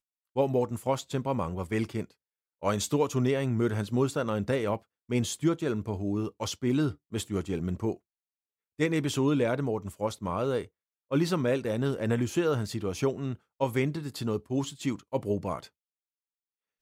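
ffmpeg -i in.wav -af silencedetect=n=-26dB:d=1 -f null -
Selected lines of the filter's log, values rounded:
silence_start: 15.57
silence_end: 16.81 | silence_duration: 1.24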